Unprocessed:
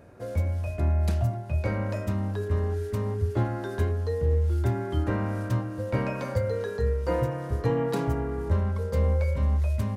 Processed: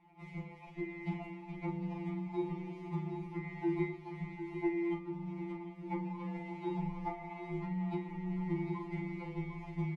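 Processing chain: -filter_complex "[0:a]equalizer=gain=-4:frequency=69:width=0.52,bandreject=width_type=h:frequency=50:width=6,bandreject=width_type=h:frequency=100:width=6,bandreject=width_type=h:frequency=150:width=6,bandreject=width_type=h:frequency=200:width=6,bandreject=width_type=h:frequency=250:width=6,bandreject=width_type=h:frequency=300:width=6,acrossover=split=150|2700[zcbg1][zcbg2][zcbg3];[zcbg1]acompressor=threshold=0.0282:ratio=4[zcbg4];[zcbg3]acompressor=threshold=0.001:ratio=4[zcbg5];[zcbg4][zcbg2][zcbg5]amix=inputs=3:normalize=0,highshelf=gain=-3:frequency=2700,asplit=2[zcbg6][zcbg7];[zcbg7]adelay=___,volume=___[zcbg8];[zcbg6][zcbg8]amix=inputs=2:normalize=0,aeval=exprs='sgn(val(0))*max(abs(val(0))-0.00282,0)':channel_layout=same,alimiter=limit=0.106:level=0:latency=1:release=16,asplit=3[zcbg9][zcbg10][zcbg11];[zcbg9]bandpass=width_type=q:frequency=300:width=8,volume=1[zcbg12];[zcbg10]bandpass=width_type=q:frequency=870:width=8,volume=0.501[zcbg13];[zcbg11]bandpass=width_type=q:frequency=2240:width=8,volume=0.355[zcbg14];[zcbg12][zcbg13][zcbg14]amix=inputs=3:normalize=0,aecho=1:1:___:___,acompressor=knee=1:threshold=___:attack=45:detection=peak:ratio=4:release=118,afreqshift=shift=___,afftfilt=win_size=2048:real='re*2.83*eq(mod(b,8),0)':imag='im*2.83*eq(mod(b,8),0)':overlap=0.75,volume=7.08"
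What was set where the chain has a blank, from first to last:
42, 0.501, 752, 0.355, 0.00562, -51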